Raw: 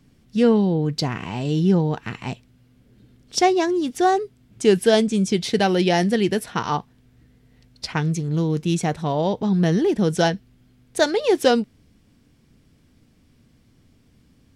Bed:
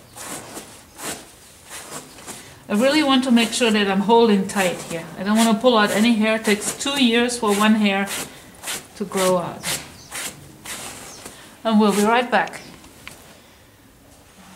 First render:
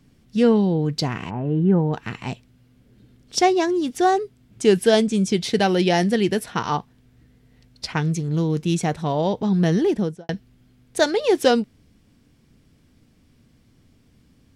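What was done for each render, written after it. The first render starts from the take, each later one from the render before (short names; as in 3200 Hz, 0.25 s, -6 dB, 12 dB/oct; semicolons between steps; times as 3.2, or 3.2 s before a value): 1.29–1.92 LPF 1400 Hz -> 2500 Hz 24 dB/oct; 9.88–10.29 studio fade out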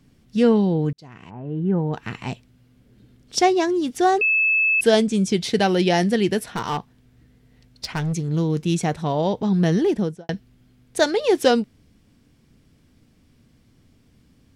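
0.93–2.15 fade in; 4.21–4.81 bleep 2610 Hz -15.5 dBFS; 6.39–8.15 overloaded stage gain 20.5 dB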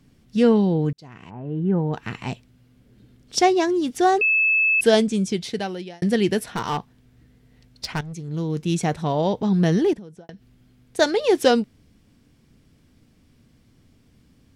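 4.97–6.02 fade out; 8.01–8.87 fade in, from -13.5 dB; 9.93–10.99 compressor, threshold -37 dBFS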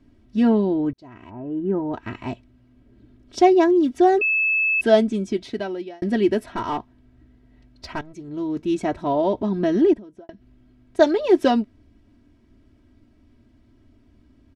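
LPF 1300 Hz 6 dB/oct; comb 3.1 ms, depth 86%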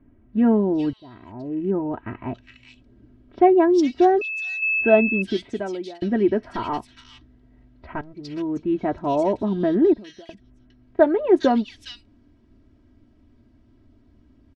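air absorption 66 m; bands offset in time lows, highs 0.41 s, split 2400 Hz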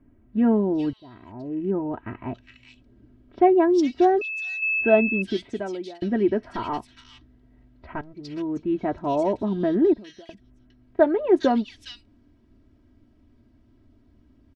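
gain -2 dB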